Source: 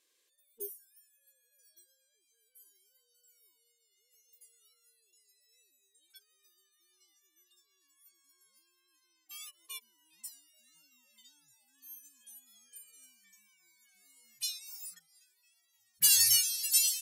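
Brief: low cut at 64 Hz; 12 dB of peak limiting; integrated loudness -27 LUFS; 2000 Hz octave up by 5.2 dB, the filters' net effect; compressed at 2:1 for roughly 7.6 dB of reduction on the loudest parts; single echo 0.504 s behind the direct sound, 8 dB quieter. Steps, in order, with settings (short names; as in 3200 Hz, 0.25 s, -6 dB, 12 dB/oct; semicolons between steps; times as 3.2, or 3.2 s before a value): HPF 64 Hz; bell 2000 Hz +7.5 dB; compressor 2:1, threshold -34 dBFS; limiter -30 dBFS; echo 0.504 s -8 dB; gain +16 dB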